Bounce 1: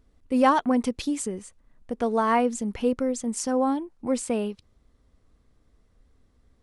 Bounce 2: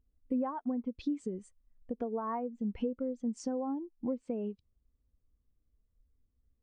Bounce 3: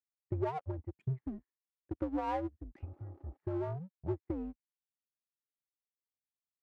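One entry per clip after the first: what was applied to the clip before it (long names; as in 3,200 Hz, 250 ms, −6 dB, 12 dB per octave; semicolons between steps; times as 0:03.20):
treble cut that deepens with the level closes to 2,100 Hz, closed at −20.5 dBFS; downward compressor 16 to 1, threshold −31 dBFS, peak gain reduction 17.5 dB; every bin expanded away from the loudest bin 1.5 to 1; level −2 dB
healed spectral selection 0:02.81–0:03.34, 420–1,500 Hz before; single-sideband voice off tune −160 Hz 300–2,200 Hz; power curve on the samples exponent 1.4; level +4 dB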